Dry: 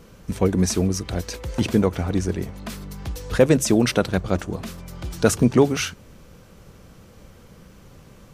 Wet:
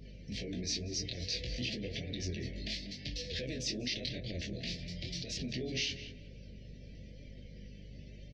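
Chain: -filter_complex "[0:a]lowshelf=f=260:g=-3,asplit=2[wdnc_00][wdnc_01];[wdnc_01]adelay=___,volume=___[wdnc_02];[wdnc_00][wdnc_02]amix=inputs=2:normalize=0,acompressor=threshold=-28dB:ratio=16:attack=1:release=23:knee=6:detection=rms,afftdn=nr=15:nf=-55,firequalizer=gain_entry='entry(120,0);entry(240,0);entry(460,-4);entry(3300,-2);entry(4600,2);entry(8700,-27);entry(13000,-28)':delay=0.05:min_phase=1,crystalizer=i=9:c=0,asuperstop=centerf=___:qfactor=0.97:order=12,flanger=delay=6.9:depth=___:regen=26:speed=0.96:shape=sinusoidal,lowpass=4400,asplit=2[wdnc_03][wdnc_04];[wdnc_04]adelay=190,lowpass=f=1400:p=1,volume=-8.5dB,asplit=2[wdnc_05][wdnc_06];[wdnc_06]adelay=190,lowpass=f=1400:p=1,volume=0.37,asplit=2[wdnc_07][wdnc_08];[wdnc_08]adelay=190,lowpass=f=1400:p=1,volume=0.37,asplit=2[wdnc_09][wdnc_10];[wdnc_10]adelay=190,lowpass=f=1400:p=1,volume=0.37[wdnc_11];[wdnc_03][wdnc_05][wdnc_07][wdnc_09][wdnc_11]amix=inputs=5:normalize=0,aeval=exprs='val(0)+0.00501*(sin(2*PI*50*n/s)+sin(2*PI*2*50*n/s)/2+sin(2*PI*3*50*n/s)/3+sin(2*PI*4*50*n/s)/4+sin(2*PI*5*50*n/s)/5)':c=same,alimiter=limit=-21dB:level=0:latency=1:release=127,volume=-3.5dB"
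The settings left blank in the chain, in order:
24, -3dB, 1100, 10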